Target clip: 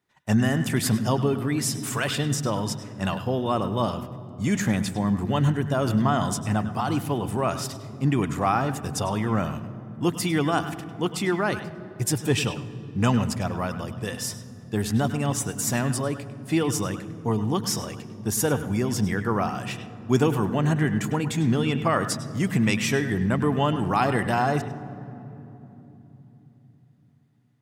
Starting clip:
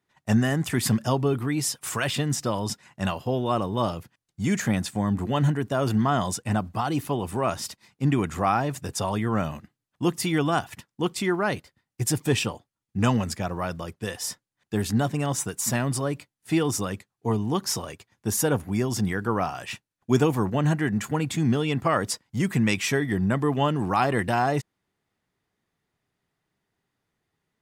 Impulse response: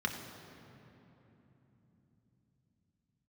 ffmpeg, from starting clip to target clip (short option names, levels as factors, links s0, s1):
-filter_complex "[0:a]asplit=2[s0][s1];[1:a]atrim=start_sample=2205,adelay=101[s2];[s1][s2]afir=irnorm=-1:irlink=0,volume=0.168[s3];[s0][s3]amix=inputs=2:normalize=0"